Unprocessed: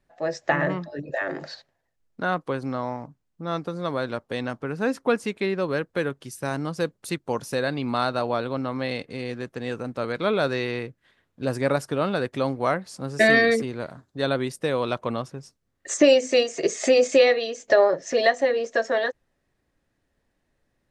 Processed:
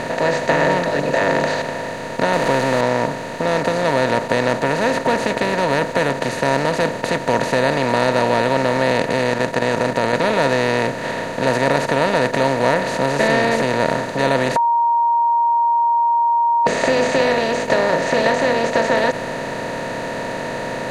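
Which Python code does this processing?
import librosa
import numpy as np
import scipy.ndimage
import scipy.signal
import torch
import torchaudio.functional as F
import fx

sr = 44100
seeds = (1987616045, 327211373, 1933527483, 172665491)

y = fx.zero_step(x, sr, step_db=-35.0, at=(2.33, 2.81))
y = fx.level_steps(y, sr, step_db=11, at=(9.29, 10.13))
y = fx.edit(y, sr, fx.bleep(start_s=14.56, length_s=2.11, hz=937.0, db=-7.0), tone=tone)
y = fx.bin_compress(y, sr, power=0.2)
y = fx.low_shelf(y, sr, hz=210.0, db=9.5)
y = F.gain(torch.from_numpy(y), -6.5).numpy()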